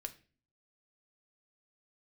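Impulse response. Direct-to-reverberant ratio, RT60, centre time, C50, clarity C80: 4.5 dB, 0.40 s, 5 ms, 16.5 dB, 21.0 dB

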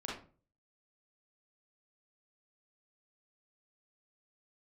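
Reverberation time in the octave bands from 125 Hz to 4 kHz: 0.55, 0.45, 0.40, 0.35, 0.30, 0.25 seconds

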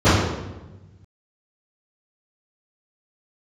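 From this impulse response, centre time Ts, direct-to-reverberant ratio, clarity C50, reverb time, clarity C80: 85 ms, −19.0 dB, −1.0 dB, 1.1 s, 2.5 dB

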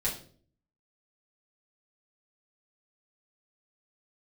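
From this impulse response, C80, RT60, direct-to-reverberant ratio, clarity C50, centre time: 13.0 dB, 0.50 s, −8.0 dB, 8.5 dB, 23 ms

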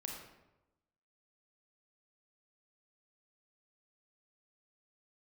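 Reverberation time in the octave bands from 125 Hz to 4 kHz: 1.1, 1.1, 1.0, 0.95, 0.75, 0.60 seconds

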